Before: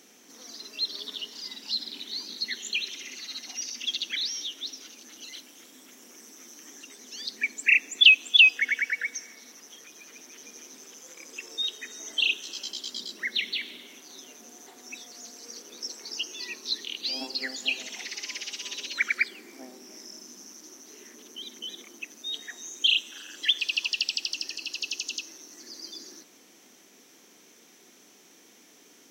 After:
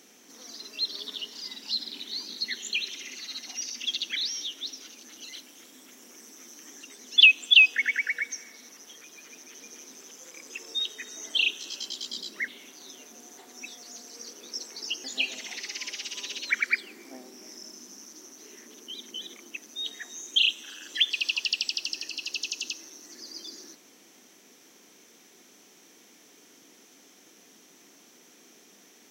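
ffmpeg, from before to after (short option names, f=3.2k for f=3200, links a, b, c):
-filter_complex "[0:a]asplit=4[a][b][c][d];[a]atrim=end=7.172[e];[b]atrim=start=7.998:end=13.312[f];[c]atrim=start=13.768:end=16.332[g];[d]atrim=start=17.518[h];[e][f]acrossfade=d=0.004:c1=hsin:c2=hsin[i];[i][g]acrossfade=d=0.004:c1=hsin:c2=hsin[j];[j][h]acrossfade=d=0.004:c1=hsin:c2=hsin"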